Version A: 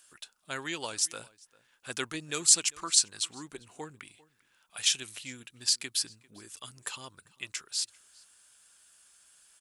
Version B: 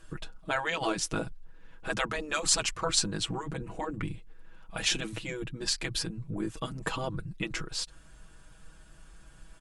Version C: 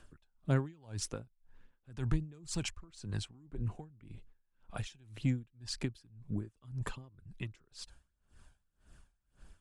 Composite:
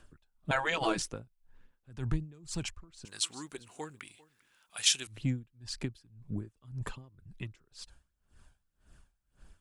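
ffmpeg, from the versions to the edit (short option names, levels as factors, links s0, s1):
-filter_complex "[2:a]asplit=3[s0][s1][s2];[s0]atrim=end=0.512[s3];[1:a]atrim=start=0.508:end=1.022[s4];[s1]atrim=start=1.018:end=3.052[s5];[0:a]atrim=start=3.048:end=5.072[s6];[s2]atrim=start=5.068[s7];[s3][s4]acrossfade=d=0.004:c1=hsin:c2=hsin[s8];[s8][s5]acrossfade=d=0.004:c1=hsin:c2=hsin[s9];[s9][s6]acrossfade=d=0.004:c1=hsin:c2=hsin[s10];[s10][s7]acrossfade=d=0.004:c1=hsin:c2=hsin"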